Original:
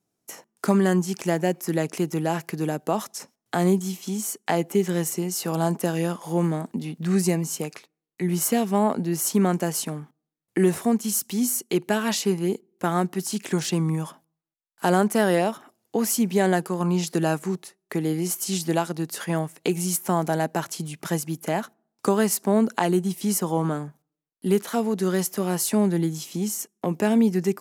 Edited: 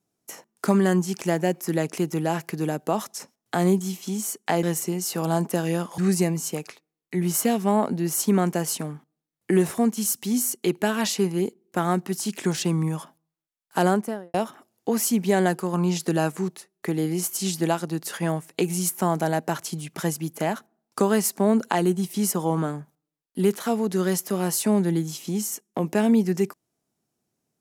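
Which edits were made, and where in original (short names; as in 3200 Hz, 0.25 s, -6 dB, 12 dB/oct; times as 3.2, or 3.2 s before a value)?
4.63–4.93 cut
6.28–7.05 cut
14.88–15.41 studio fade out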